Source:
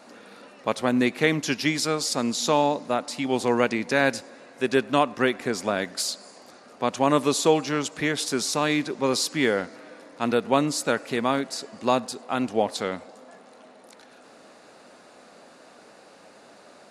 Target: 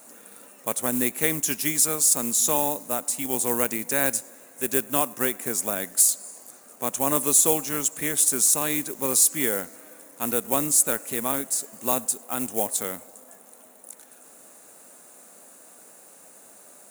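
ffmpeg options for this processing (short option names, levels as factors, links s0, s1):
-af "acrusher=bits=5:mode=log:mix=0:aa=0.000001,aexciter=amount=10.1:drive=6.9:freq=6900,volume=0.531"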